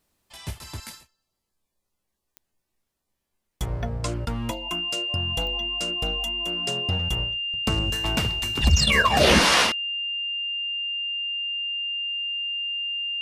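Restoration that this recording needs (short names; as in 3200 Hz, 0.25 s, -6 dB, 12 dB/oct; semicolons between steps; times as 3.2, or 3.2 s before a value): de-click; notch 2800 Hz, Q 30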